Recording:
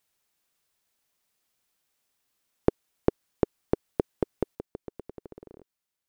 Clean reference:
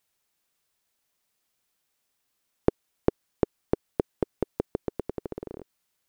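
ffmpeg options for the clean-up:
-af "asetnsamples=n=441:p=0,asendcmd='4.55 volume volume 9.5dB',volume=1"

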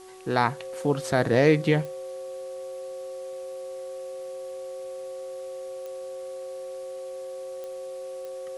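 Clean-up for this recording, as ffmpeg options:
-af "adeclick=t=4,bandreject=f=374.6:t=h:w=4,bandreject=f=749.2:t=h:w=4,bandreject=f=1123.8:t=h:w=4,bandreject=f=530:w=30,afwtdn=0.0022"

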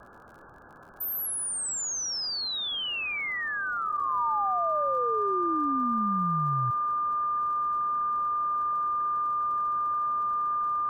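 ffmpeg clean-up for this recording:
-af "adeclick=t=4,bandreject=f=1200:w=30,afftdn=nr=30:nf=-32"

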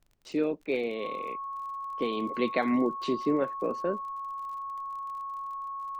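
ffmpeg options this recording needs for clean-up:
-af "adeclick=t=4,bandreject=f=1100:w=30,agate=range=0.0891:threshold=0.0355"

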